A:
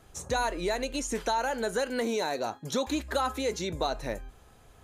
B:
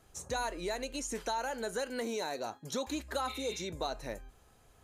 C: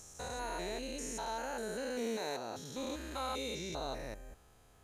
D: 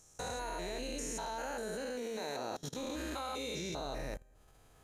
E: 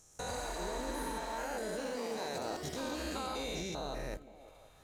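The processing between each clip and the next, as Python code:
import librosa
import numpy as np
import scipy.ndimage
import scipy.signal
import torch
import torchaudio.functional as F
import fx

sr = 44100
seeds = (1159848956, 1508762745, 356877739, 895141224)

y1 = fx.notch(x, sr, hz=3500.0, q=29.0)
y1 = fx.spec_repair(y1, sr, seeds[0], start_s=3.3, length_s=0.31, low_hz=1500.0, high_hz=4600.0, source='after')
y1 = fx.bass_treble(y1, sr, bass_db=-1, treble_db=3)
y1 = y1 * 10.0 ** (-6.5 / 20.0)
y2 = fx.spec_steps(y1, sr, hold_ms=200)
y2 = y2 * 10.0 ** (1.0 / 20.0)
y3 = fx.room_shoebox(y2, sr, seeds[1], volume_m3=740.0, walls='furnished', distance_m=0.56)
y3 = fx.level_steps(y3, sr, step_db=23)
y3 = y3 * 10.0 ** (6.5 / 20.0)
y4 = fx.echo_stepped(y3, sr, ms=175, hz=240.0, octaves=0.7, feedback_pct=70, wet_db=-10.0)
y4 = fx.echo_pitch(y4, sr, ms=123, semitones=3, count=2, db_per_echo=-6.0)
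y4 = fx.spec_repair(y4, sr, seeds[2], start_s=0.35, length_s=0.96, low_hz=760.0, high_hz=8900.0, source='both')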